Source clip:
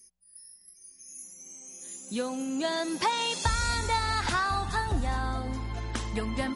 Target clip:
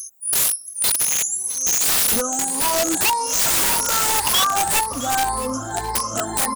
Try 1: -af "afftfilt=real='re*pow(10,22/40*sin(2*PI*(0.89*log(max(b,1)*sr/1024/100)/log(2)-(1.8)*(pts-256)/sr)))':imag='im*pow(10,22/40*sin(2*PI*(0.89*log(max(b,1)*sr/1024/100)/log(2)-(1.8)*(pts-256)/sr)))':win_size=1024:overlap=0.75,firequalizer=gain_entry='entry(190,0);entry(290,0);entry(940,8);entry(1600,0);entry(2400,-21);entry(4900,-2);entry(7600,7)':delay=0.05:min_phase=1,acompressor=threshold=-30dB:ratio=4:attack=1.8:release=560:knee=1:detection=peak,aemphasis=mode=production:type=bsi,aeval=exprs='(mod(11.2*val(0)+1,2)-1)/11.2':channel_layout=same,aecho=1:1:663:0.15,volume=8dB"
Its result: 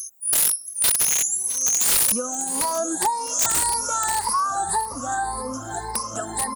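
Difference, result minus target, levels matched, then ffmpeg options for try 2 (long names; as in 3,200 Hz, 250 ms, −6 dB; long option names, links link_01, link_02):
downward compressor: peak gain reduction +5.5 dB
-af "afftfilt=real='re*pow(10,22/40*sin(2*PI*(0.89*log(max(b,1)*sr/1024/100)/log(2)-(1.8)*(pts-256)/sr)))':imag='im*pow(10,22/40*sin(2*PI*(0.89*log(max(b,1)*sr/1024/100)/log(2)-(1.8)*(pts-256)/sr)))':win_size=1024:overlap=0.75,firequalizer=gain_entry='entry(190,0);entry(290,0);entry(940,8);entry(1600,0);entry(2400,-21);entry(4900,-2);entry(7600,7)':delay=0.05:min_phase=1,acompressor=threshold=-23dB:ratio=4:attack=1.8:release=560:knee=1:detection=peak,aemphasis=mode=production:type=bsi,aeval=exprs='(mod(11.2*val(0)+1,2)-1)/11.2':channel_layout=same,aecho=1:1:663:0.15,volume=8dB"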